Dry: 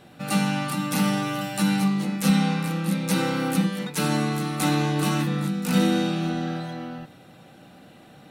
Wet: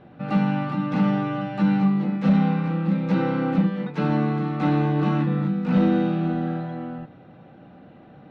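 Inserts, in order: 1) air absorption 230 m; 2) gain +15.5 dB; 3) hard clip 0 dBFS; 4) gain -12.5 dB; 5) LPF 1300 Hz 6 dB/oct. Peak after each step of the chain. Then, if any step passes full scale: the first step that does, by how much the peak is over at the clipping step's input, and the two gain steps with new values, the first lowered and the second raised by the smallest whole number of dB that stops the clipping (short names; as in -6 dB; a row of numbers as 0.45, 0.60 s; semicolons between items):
-10.0, +5.5, 0.0, -12.5, -12.5 dBFS; step 2, 5.5 dB; step 2 +9.5 dB, step 4 -6.5 dB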